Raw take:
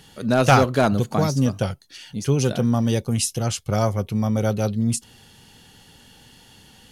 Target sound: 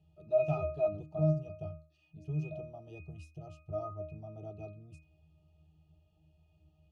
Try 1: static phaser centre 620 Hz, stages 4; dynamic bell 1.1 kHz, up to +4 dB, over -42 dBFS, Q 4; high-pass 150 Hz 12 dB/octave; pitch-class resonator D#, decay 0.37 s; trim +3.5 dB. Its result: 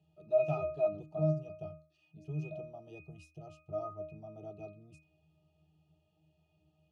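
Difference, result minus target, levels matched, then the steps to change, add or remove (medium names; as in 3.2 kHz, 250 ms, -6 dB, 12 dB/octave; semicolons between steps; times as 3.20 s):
125 Hz band -3.0 dB
remove: high-pass 150 Hz 12 dB/octave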